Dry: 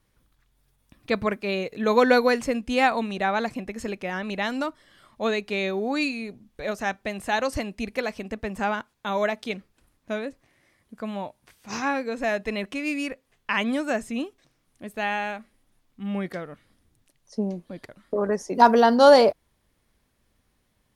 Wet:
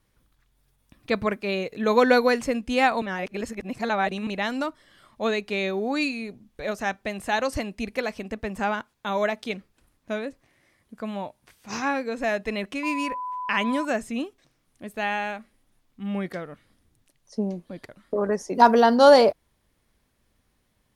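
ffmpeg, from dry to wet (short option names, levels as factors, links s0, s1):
-filter_complex "[0:a]asettb=1/sr,asplit=3[s0][s1][s2];[s0]atrim=end=12.834[s3];[s1]atrim=start=12.83:end=13.85,asetpts=PTS-STARTPTS,afade=t=in:d=0.004:c=qsin,afade=t=out:st=1.016:d=0.004:c=qsin,aeval=exprs='val(0)+0.0355*sin(2*PI*1000*n/s)':c=same[s4];[s2]atrim=start=13.846[s5];[s3][s4]acrossfade=d=0.004:c1=hsin:c2=qsin[s6];[s6][s5]acrossfade=d=0.004:c1=qsin:c2=hsin,asplit=3[s7][s8][s9];[s7]atrim=end=3.022[s10];[s8]atrim=start=3.018:end=4.272,asetpts=PTS-STARTPTS,areverse[s11];[s9]atrim=start=4.268[s12];[s10][s11]acrossfade=d=0.004:c1=hsin:c2=hsin[s13];[s13][s12]acrossfade=d=0.004:c1=hsin:c2=hsin"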